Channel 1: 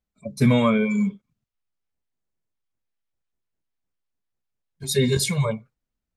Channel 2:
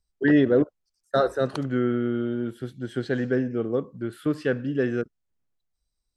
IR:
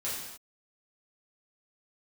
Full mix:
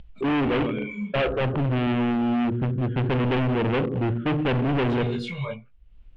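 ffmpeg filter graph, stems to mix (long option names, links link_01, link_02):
-filter_complex "[0:a]flanger=delay=17.5:depth=5.9:speed=1.4,volume=0dB[link_01];[1:a]lowpass=1100,aemphasis=mode=reproduction:type=riaa,dynaudnorm=framelen=260:gausssize=9:maxgain=14.5dB,volume=-2.5dB,asplit=3[link_02][link_03][link_04];[link_03]volume=-12dB[link_05];[link_04]apad=whole_len=271659[link_06];[link_01][link_06]sidechaincompress=threshold=-24dB:ratio=10:attack=10:release=812[link_07];[2:a]atrim=start_sample=2205[link_08];[link_05][link_08]afir=irnorm=-1:irlink=0[link_09];[link_07][link_02][link_09]amix=inputs=3:normalize=0,acompressor=mode=upward:threshold=-31dB:ratio=2.5,asoftclip=type=hard:threshold=-21.5dB,lowpass=frequency=2900:width_type=q:width=3.3"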